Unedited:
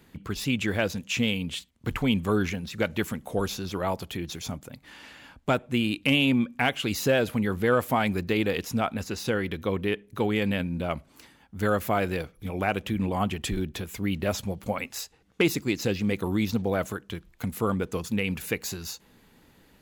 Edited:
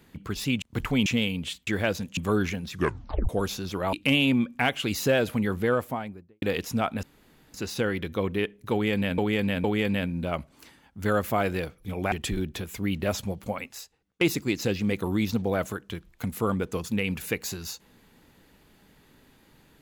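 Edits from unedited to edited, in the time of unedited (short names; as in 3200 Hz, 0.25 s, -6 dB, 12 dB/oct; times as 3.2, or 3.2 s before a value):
0.62–1.12 swap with 1.73–2.17
2.7 tape stop 0.59 s
3.93–5.93 cut
7.47–8.42 studio fade out
9.03 insert room tone 0.51 s
10.21–10.67 loop, 3 plays
12.69–13.32 cut
14.5–15.41 fade out, to -23 dB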